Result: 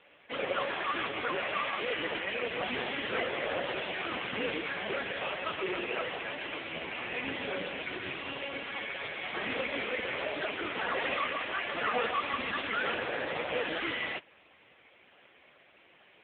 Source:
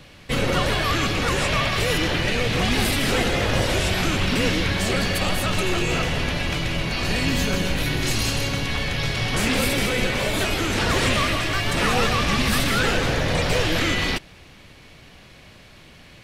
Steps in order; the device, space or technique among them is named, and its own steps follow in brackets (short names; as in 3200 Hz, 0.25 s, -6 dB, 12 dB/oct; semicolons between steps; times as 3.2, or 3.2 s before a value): telephone (BPF 380–3500 Hz; gain -3.5 dB; AMR-NB 5.15 kbps 8000 Hz)